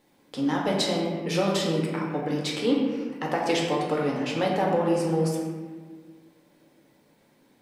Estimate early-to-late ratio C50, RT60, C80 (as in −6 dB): 1.0 dB, 1.6 s, 3.0 dB